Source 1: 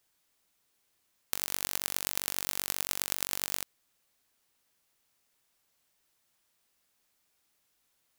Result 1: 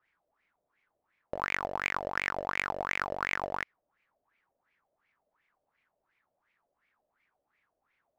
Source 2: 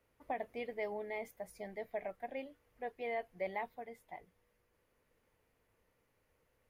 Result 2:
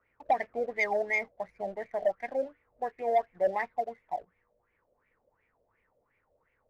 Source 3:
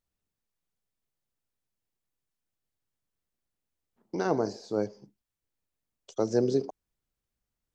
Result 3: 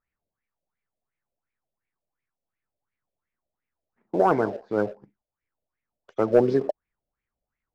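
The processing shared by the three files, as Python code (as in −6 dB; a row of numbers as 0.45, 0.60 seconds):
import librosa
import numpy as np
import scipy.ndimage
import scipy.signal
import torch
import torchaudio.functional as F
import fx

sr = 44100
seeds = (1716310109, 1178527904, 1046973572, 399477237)

y = fx.filter_lfo_lowpass(x, sr, shape='sine', hz=2.8, low_hz=580.0, high_hz=2300.0, q=6.8)
y = fx.leveller(y, sr, passes=1)
y = fx.dynamic_eq(y, sr, hz=5200.0, q=3.7, threshold_db=-59.0, ratio=4.0, max_db=5)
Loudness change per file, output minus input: −1.0, +11.0, +6.0 LU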